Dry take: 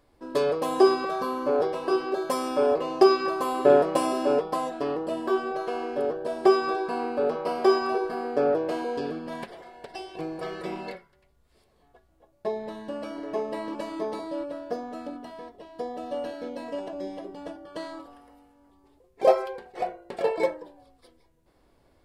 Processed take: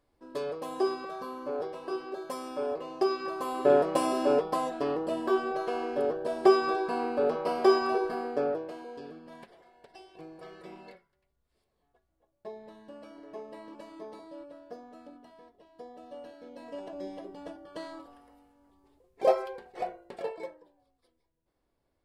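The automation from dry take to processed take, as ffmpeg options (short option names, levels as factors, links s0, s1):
-af "volume=2.24,afade=t=in:st=3.07:d=1.15:silence=0.375837,afade=t=out:st=8.09:d=0.64:silence=0.266073,afade=t=in:st=16.45:d=0.57:silence=0.375837,afade=t=out:st=19.96:d=0.46:silence=0.281838"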